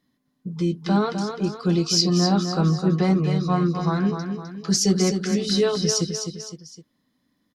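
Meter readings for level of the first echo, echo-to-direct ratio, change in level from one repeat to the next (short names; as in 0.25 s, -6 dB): -7.0 dB, -6.0 dB, -7.0 dB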